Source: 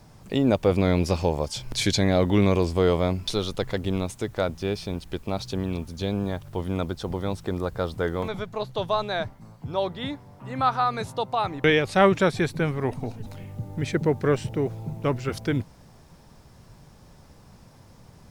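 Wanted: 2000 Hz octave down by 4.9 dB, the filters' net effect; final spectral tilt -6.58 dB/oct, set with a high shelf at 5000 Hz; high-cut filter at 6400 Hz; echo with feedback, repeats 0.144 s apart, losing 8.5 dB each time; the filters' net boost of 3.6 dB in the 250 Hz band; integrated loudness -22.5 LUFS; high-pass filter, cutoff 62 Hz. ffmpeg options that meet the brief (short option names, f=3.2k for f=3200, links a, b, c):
-af "highpass=62,lowpass=6.4k,equalizer=f=250:t=o:g=5,equalizer=f=2k:t=o:g=-5.5,highshelf=f=5k:g=-5.5,aecho=1:1:144|288|432|576:0.376|0.143|0.0543|0.0206,volume=1.5dB"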